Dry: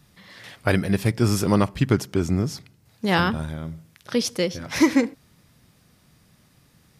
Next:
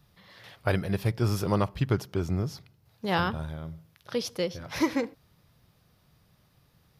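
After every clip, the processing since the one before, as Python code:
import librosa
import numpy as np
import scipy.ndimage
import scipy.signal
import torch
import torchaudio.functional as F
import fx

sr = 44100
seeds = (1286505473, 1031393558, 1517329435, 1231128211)

y = fx.graphic_eq_10(x, sr, hz=(250, 2000, 8000), db=(-8, -5, -11))
y = y * librosa.db_to_amplitude(-3.0)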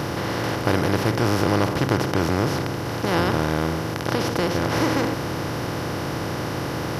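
y = fx.bin_compress(x, sr, power=0.2)
y = y * librosa.db_to_amplitude(-2.0)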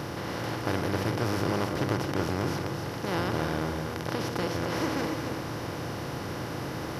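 y = x + 10.0 ** (-6.0 / 20.0) * np.pad(x, (int(276 * sr / 1000.0), 0))[:len(x)]
y = y * librosa.db_to_amplitude(-8.5)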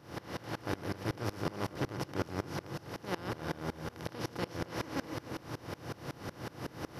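y = fx.tremolo_decay(x, sr, direction='swelling', hz=5.4, depth_db=24)
y = y * librosa.db_to_amplitude(-1.5)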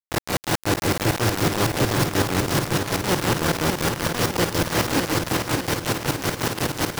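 y = fx.quant_companded(x, sr, bits=2)
y = fx.echo_feedback(y, sr, ms=609, feedback_pct=43, wet_db=-6.0)
y = y * librosa.db_to_amplitude(8.5)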